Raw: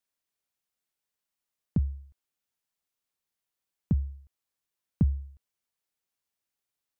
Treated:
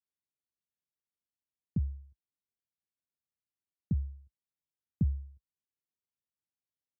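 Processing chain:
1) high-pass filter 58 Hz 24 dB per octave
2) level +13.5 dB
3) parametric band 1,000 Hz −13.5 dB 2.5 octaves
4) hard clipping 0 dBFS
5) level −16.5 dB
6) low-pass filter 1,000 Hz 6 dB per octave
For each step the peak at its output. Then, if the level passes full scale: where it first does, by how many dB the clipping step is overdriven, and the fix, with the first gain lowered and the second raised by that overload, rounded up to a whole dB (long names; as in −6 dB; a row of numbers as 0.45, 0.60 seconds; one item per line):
−14.0, −0.5, −3.0, −3.0, −19.5, −19.5 dBFS
no step passes full scale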